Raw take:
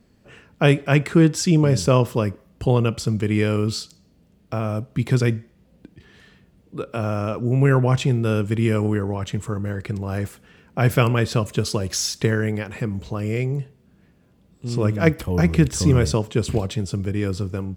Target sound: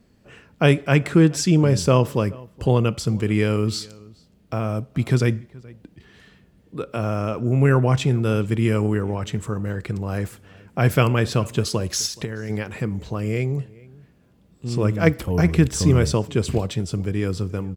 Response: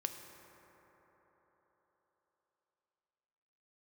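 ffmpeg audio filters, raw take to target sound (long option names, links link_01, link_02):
-filter_complex "[0:a]asplit=3[link_01][link_02][link_03];[link_01]afade=type=out:start_time=12.06:duration=0.02[link_04];[link_02]acompressor=threshold=-25dB:ratio=10,afade=type=in:start_time=12.06:duration=0.02,afade=type=out:start_time=12.49:duration=0.02[link_05];[link_03]afade=type=in:start_time=12.49:duration=0.02[link_06];[link_04][link_05][link_06]amix=inputs=3:normalize=0,asplit=2[link_07][link_08];[link_08]adelay=425.7,volume=-23dB,highshelf=frequency=4000:gain=-9.58[link_09];[link_07][link_09]amix=inputs=2:normalize=0"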